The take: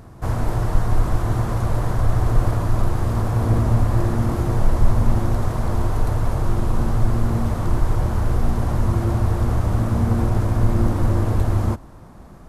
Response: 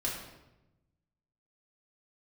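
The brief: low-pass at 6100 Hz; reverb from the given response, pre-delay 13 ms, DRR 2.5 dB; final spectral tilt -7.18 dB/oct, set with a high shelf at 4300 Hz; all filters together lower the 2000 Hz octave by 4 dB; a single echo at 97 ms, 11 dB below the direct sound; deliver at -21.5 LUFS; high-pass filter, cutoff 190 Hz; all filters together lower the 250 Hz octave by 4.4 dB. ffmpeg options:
-filter_complex "[0:a]highpass=190,lowpass=6.1k,equalizer=f=250:t=o:g=-3.5,equalizer=f=2k:t=o:g=-6,highshelf=f=4.3k:g=3,aecho=1:1:97:0.282,asplit=2[a][b];[1:a]atrim=start_sample=2205,adelay=13[c];[b][c]afir=irnorm=-1:irlink=0,volume=-7dB[d];[a][d]amix=inputs=2:normalize=0,volume=5dB"

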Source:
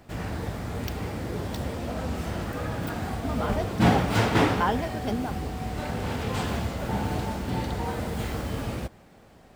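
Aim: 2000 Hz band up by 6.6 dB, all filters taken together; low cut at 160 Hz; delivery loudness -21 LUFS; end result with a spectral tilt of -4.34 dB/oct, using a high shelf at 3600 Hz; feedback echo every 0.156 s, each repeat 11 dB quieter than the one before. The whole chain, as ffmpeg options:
-af "highpass=160,equalizer=f=2k:t=o:g=7,highshelf=f=3.6k:g=5,aecho=1:1:156|312|468:0.282|0.0789|0.0221,volume=6.5dB"

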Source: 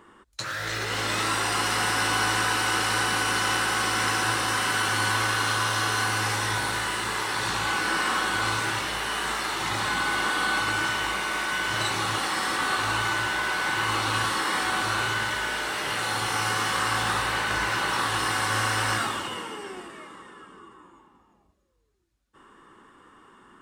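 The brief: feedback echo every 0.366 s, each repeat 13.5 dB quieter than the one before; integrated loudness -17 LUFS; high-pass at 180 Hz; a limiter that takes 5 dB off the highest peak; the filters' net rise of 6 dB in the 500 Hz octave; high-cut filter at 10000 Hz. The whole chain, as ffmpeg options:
-af "highpass=180,lowpass=10k,equalizer=f=500:t=o:g=7.5,alimiter=limit=-15.5dB:level=0:latency=1,aecho=1:1:366|732:0.211|0.0444,volume=8dB"

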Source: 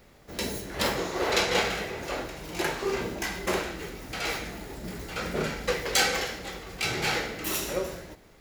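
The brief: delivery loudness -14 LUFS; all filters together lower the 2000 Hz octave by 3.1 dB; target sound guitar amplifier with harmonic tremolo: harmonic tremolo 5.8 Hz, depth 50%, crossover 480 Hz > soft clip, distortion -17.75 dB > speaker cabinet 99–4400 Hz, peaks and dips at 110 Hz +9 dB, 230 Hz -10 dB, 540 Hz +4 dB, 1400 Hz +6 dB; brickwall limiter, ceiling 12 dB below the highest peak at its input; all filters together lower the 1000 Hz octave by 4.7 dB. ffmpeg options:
-filter_complex "[0:a]equalizer=f=1k:t=o:g=-8.5,equalizer=f=2k:t=o:g=-3.5,alimiter=limit=-23dB:level=0:latency=1,acrossover=split=480[a][b];[a]aeval=exprs='val(0)*(1-0.5/2+0.5/2*cos(2*PI*5.8*n/s))':c=same[c];[b]aeval=exprs='val(0)*(1-0.5/2-0.5/2*cos(2*PI*5.8*n/s))':c=same[d];[c][d]amix=inputs=2:normalize=0,asoftclip=threshold=-29.5dB,highpass=99,equalizer=f=110:t=q:w=4:g=9,equalizer=f=230:t=q:w=4:g=-10,equalizer=f=540:t=q:w=4:g=4,equalizer=f=1.4k:t=q:w=4:g=6,lowpass=f=4.4k:w=0.5412,lowpass=f=4.4k:w=1.3066,volume=24.5dB"

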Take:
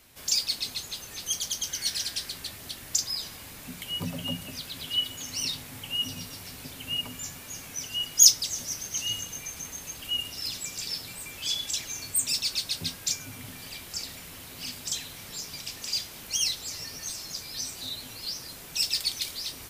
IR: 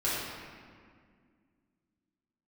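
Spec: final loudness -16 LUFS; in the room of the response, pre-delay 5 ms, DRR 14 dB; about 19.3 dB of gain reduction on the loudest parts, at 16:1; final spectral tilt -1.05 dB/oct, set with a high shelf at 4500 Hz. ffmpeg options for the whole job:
-filter_complex "[0:a]highshelf=f=4.5k:g=3.5,acompressor=threshold=-28dB:ratio=16,asplit=2[a][b];[1:a]atrim=start_sample=2205,adelay=5[c];[b][c]afir=irnorm=-1:irlink=0,volume=-23.5dB[d];[a][d]amix=inputs=2:normalize=0,volume=16.5dB"

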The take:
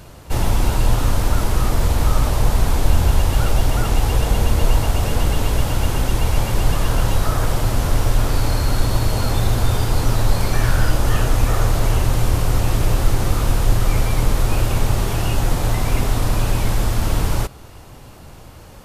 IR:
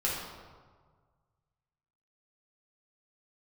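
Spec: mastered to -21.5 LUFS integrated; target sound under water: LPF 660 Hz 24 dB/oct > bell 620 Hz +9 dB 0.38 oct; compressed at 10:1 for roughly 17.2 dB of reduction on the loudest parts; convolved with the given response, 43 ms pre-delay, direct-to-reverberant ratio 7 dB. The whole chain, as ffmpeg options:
-filter_complex "[0:a]acompressor=threshold=-26dB:ratio=10,asplit=2[a][b];[1:a]atrim=start_sample=2205,adelay=43[c];[b][c]afir=irnorm=-1:irlink=0,volume=-14.5dB[d];[a][d]amix=inputs=2:normalize=0,lowpass=f=660:w=0.5412,lowpass=f=660:w=1.3066,equalizer=f=620:t=o:w=0.38:g=9,volume=12dB"

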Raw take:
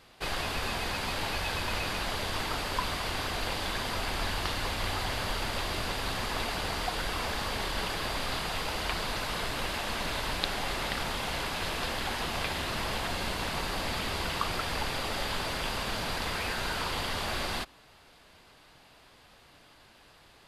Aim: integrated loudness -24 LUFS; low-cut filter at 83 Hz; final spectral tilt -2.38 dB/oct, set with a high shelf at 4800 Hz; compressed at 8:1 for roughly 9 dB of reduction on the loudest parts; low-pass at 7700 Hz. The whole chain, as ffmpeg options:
-af "highpass=83,lowpass=7.7k,highshelf=f=4.8k:g=6.5,acompressor=threshold=-34dB:ratio=8,volume=12dB"

